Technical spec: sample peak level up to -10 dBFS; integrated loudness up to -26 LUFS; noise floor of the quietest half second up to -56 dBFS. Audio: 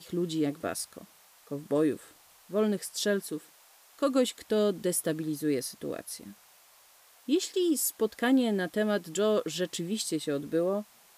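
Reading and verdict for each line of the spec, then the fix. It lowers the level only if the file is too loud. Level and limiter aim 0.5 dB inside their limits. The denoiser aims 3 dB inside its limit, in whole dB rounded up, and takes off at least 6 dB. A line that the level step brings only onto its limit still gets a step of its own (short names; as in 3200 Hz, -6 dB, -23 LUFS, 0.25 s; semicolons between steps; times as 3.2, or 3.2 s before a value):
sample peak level -15.0 dBFS: OK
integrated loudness -30.0 LUFS: OK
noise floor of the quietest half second -59 dBFS: OK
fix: none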